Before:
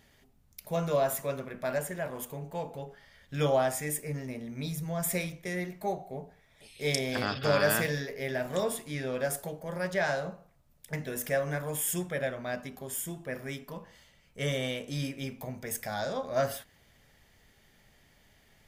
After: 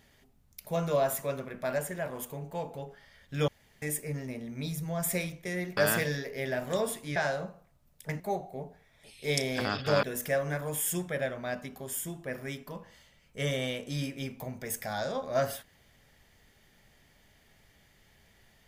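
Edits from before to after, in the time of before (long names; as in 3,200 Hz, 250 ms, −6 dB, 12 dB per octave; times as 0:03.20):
0:03.48–0:03.82: fill with room tone
0:05.77–0:07.60: move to 0:11.04
0:08.99–0:10.00: remove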